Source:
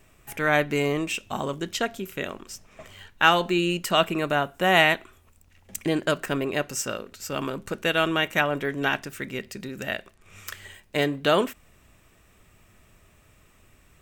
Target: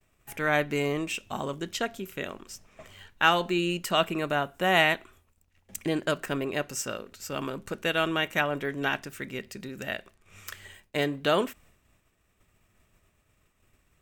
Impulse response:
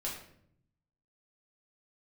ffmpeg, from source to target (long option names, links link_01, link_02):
-af "agate=range=-33dB:threshold=-50dB:ratio=3:detection=peak,volume=-3.5dB"